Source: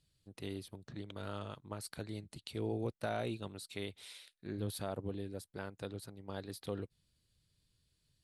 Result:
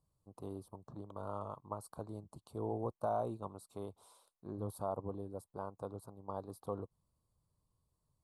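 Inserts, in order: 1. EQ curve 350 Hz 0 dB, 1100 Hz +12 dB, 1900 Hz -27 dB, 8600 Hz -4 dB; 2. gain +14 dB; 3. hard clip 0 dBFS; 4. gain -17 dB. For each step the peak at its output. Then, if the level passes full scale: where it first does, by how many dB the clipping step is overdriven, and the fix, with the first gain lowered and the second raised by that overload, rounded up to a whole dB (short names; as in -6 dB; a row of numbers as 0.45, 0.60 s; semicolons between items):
-20.0, -6.0, -6.0, -23.0 dBFS; no overload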